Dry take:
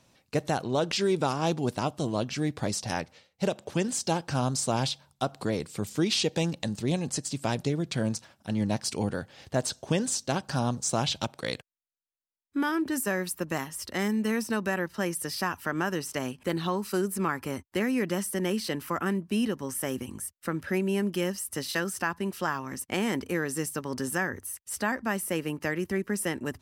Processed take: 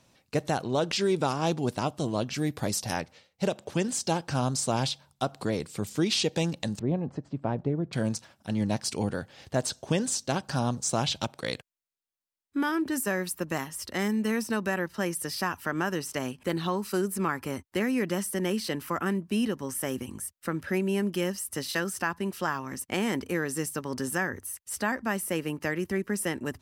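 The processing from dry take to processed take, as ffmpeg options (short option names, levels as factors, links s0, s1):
-filter_complex "[0:a]asettb=1/sr,asplit=3[s0][s1][s2];[s0]atrim=end=2.344[s3];[s1]atrim=start=2.34:end=2.96,asetpts=PTS-STARTPTS,afade=t=in:d=0.004:c=qsin,afade=t=out:st=0.616:d=0.004:c=qsin,equalizer=f=13000:t=o:w=0.48:g=14.5[s4];[s2]atrim=start=2.956[s5];[s3][s4]acrossfade=d=0.004:c1=hsin:c2=qsin[s6];[s6][s5]acrossfade=d=0.004:c1=qsin:c2=hsin,asettb=1/sr,asplit=3[s7][s8][s9];[s7]atrim=end=6.794[s10];[s8]atrim=start=6.79:end=7.93,asetpts=PTS-STARTPTS,afade=t=in:d=0.004:c=qsin,afade=t=out:st=1.136:d=0.004:c=qsin,lowpass=1100[s11];[s9]atrim=start=7.926[s12];[s10][s11]acrossfade=d=0.004:c1=hsin:c2=qsin[s13];[s13][s12]acrossfade=d=0.004:c1=qsin:c2=hsin"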